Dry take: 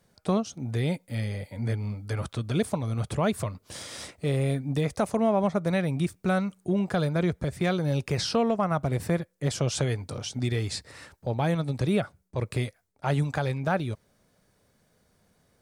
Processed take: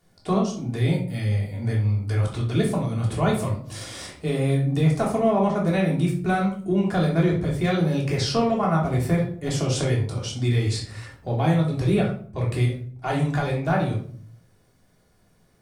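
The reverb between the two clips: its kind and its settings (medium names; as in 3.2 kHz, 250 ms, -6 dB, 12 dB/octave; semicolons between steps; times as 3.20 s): simulated room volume 540 m³, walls furnished, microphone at 3.3 m; trim -1.5 dB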